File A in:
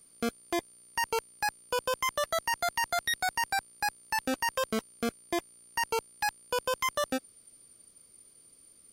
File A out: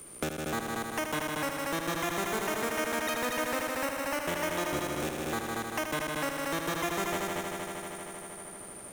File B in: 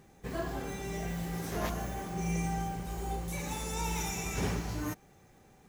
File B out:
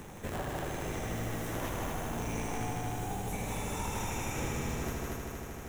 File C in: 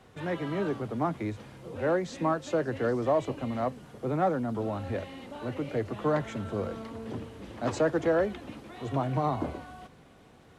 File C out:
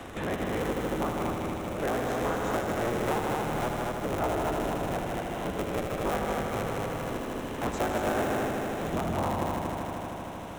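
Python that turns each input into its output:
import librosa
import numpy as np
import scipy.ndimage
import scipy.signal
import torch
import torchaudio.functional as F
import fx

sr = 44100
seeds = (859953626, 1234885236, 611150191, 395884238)

y = fx.cycle_switch(x, sr, every=3, mode='inverted')
y = fx.peak_eq(y, sr, hz=4600.0, db=-9.5, octaves=0.33)
y = fx.echo_heads(y, sr, ms=78, heads='all three', feedback_pct=62, wet_db=-6.5)
y = fx.band_squash(y, sr, depth_pct=70)
y = y * librosa.db_to_amplitude(-4.0)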